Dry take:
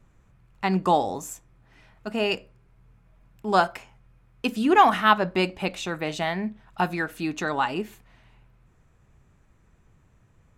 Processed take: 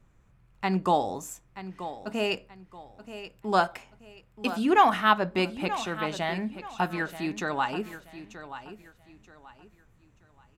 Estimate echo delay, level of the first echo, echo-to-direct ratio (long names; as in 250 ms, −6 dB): 930 ms, −13.0 dB, −12.5 dB